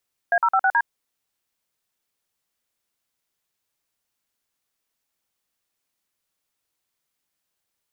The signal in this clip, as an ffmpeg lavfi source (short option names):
-f lavfi -i "aevalsrc='0.126*clip(min(mod(t,0.107),0.06-mod(t,0.107))/0.002,0,1)*(eq(floor(t/0.107),0)*(sin(2*PI*697*mod(t,0.107))+sin(2*PI*1633*mod(t,0.107)))+eq(floor(t/0.107),1)*(sin(2*PI*941*mod(t,0.107))+sin(2*PI*1336*mod(t,0.107)))+eq(floor(t/0.107),2)*(sin(2*PI*770*mod(t,0.107))+sin(2*PI*1336*mod(t,0.107)))+eq(floor(t/0.107),3)*(sin(2*PI*770*mod(t,0.107))+sin(2*PI*1477*mod(t,0.107)))+eq(floor(t/0.107),4)*(sin(2*PI*941*mod(t,0.107))+sin(2*PI*1633*mod(t,0.107))))':d=0.535:s=44100"